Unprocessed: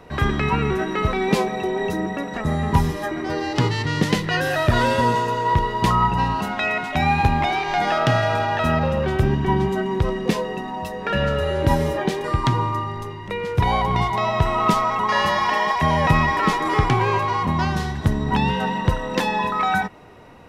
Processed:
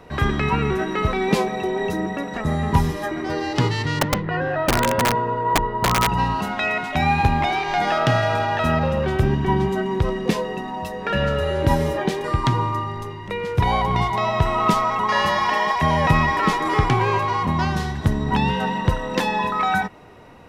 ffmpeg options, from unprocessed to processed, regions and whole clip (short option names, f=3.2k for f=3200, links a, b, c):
-filter_complex "[0:a]asettb=1/sr,asplit=3[a][b][c];[a]atrim=end=3.994[d];[b]atrim=start=3.99:end=6.09,asetpts=PTS-STARTPTS,afade=t=in:d=0.004:c=qsin,afade=t=out:st=2.096:d=0.004:c=qsin,lowpass=1.5k,aeval=exprs='(mod(3.55*val(0)+1,2)-1)/3.55':c=same[e];[c]atrim=start=6.086[f];[d][e]acrossfade=d=0.004:c1=hsin:c2=qsin[g];[g][f]acrossfade=d=0.004:c1=qsin:c2=hsin"